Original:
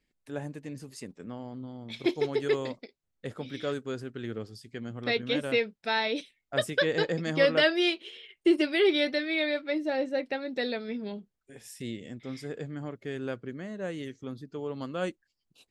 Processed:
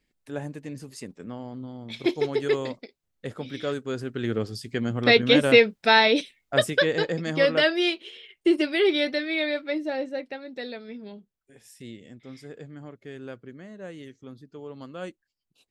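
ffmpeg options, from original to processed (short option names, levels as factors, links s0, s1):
-af "volume=3.55,afade=t=in:st=3.84:d=0.71:silence=0.398107,afade=t=out:st=5.9:d=1.1:silence=0.354813,afade=t=out:st=9.69:d=0.69:silence=0.473151"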